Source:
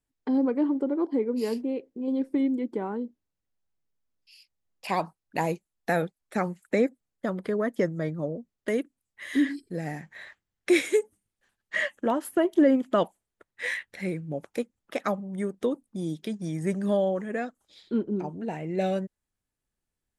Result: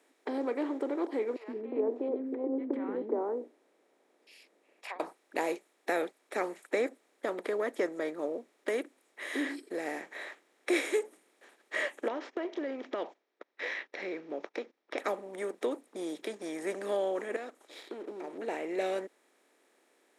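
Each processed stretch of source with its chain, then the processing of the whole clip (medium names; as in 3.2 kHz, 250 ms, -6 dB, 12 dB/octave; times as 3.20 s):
1.36–5.00 s: low-pass that closes with the level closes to 310 Hz, closed at -22 dBFS + tilt shelf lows +8.5 dB, about 1.3 kHz + three bands offset in time highs, lows, mids 120/360 ms, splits 270/1200 Hz
12.08–14.98 s: steep low-pass 5.9 kHz 72 dB/octave + gate -55 dBFS, range -21 dB + compression 4:1, threshold -30 dBFS
17.36–18.38 s: waveshaping leveller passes 1 + compression 10:1, threshold -38 dBFS
whole clip: spectral levelling over time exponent 0.6; high-pass 320 Hz 24 dB/octave; trim -7.5 dB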